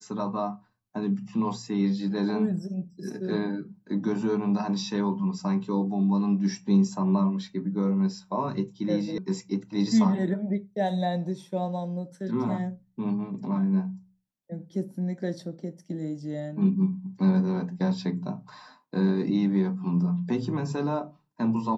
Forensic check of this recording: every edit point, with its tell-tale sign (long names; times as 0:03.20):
0:09.18: cut off before it has died away